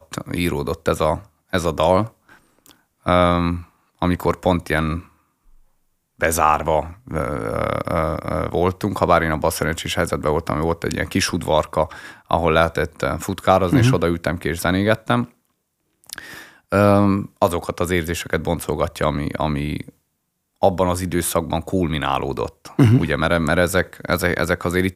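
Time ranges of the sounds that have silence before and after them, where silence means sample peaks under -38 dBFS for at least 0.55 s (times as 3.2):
6.2–15.27
16.04–19.9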